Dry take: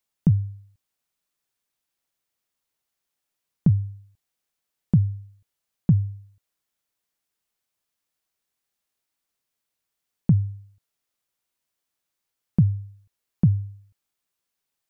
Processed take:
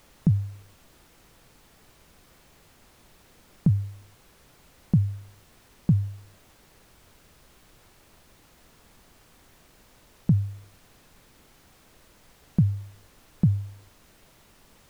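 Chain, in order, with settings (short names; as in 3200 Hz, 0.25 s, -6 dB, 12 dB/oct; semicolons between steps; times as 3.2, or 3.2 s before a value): added noise pink -54 dBFS; gain -2.5 dB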